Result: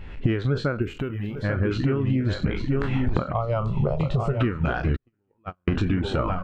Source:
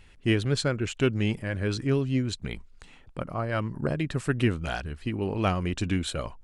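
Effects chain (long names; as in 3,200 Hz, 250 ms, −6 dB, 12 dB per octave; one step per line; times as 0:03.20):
peak hold with a decay on every bin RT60 0.42 s
camcorder AGC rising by 38 dB per second
repeating echo 841 ms, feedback 27%, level −8 dB
in parallel at −3.5 dB: soft clipping −14.5 dBFS, distortion −20 dB
0:03.33–0:04.41: on the sum: phaser with its sweep stopped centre 690 Hz, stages 4
dynamic equaliser 1,300 Hz, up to +6 dB, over −41 dBFS, Q 2.6
0:00.82–0:01.43: bad sample-rate conversion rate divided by 3×, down none, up zero stuff
0:04.96–0:05.68: noise gate −12 dBFS, range −50 dB
reverb reduction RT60 0.54 s
downward compressor 12 to 1, threshold −27 dBFS, peak gain reduction 20 dB
head-to-tape spacing loss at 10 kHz 35 dB
level +9 dB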